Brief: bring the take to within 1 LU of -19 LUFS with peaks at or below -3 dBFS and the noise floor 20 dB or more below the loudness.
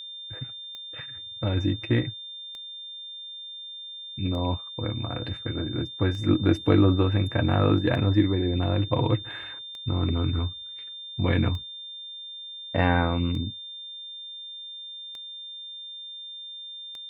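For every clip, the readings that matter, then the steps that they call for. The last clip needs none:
clicks found 10; steady tone 3.6 kHz; tone level -37 dBFS; loudness -28.0 LUFS; peak level -7.0 dBFS; loudness target -19.0 LUFS
-> de-click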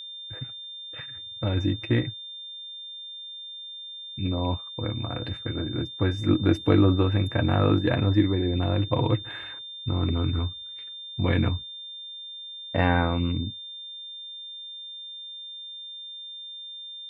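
clicks found 0; steady tone 3.6 kHz; tone level -37 dBFS
-> band-stop 3.6 kHz, Q 30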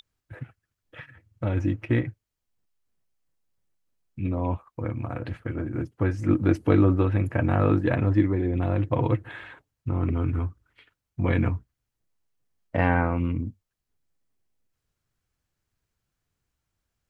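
steady tone not found; loudness -25.5 LUFS; peak level -7.0 dBFS; loudness target -19.0 LUFS
-> trim +6.5 dB; peak limiter -3 dBFS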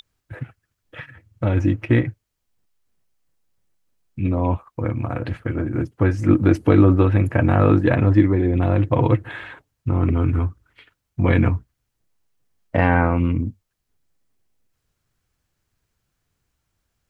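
loudness -19.5 LUFS; peak level -3.0 dBFS; noise floor -77 dBFS

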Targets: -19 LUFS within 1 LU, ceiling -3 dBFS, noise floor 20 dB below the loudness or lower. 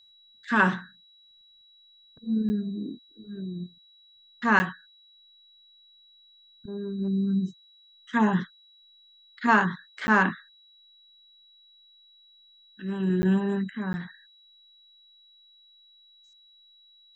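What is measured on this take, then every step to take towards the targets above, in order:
dropouts 5; longest dropout 10 ms; steady tone 3.9 kHz; tone level -55 dBFS; loudness -26.5 LUFS; peak level -7.5 dBFS; loudness target -19.0 LUFS
-> interpolate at 2.49/4.59/10.07/13.22/13.93 s, 10 ms; band-stop 3.9 kHz, Q 30; trim +7.5 dB; peak limiter -3 dBFS

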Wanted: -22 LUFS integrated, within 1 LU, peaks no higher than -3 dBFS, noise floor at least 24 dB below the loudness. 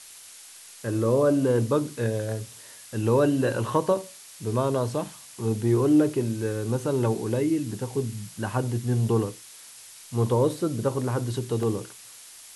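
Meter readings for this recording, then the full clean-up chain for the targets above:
dropouts 1; longest dropout 1.7 ms; noise floor -47 dBFS; noise floor target -50 dBFS; loudness -26.0 LUFS; peak level -9.5 dBFS; loudness target -22.0 LUFS
-> interpolate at 11.63 s, 1.7 ms; noise reduction 6 dB, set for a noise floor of -47 dBFS; trim +4 dB

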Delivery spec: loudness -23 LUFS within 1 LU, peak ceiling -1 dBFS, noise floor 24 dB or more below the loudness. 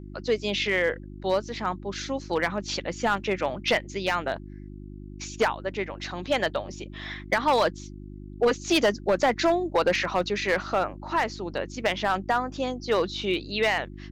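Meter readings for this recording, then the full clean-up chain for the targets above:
clipped samples 0.9%; clipping level -15.5 dBFS; hum 50 Hz; highest harmonic 350 Hz; hum level -38 dBFS; loudness -26.5 LUFS; peak level -15.5 dBFS; loudness target -23.0 LUFS
-> clip repair -15.5 dBFS; de-hum 50 Hz, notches 7; trim +3.5 dB

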